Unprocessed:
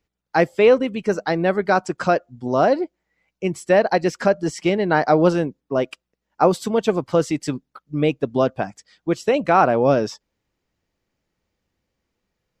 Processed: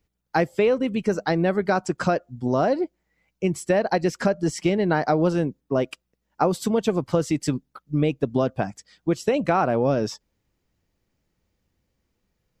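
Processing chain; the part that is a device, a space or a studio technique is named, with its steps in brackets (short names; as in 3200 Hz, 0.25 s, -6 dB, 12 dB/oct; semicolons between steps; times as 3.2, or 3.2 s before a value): ASMR close-microphone chain (low shelf 250 Hz +7.5 dB; compressor 4:1, threshold -16 dBFS, peak gain reduction 7.5 dB; high shelf 7900 Hz +7 dB); gain -1.5 dB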